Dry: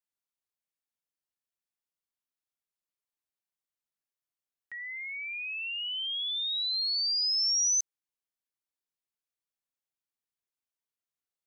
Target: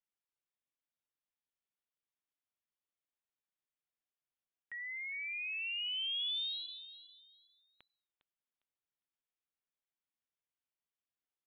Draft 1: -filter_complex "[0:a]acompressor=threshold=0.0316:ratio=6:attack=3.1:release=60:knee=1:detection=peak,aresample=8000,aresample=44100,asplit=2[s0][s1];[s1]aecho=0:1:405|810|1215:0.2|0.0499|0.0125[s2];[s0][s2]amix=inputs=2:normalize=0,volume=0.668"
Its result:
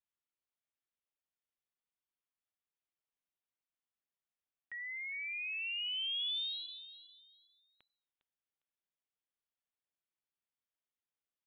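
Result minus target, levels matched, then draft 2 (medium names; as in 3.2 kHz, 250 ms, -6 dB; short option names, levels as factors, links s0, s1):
compression: peak gain reduction +5.5 dB
-filter_complex "[0:a]aresample=8000,aresample=44100,asplit=2[s0][s1];[s1]aecho=0:1:405|810|1215:0.2|0.0499|0.0125[s2];[s0][s2]amix=inputs=2:normalize=0,volume=0.668"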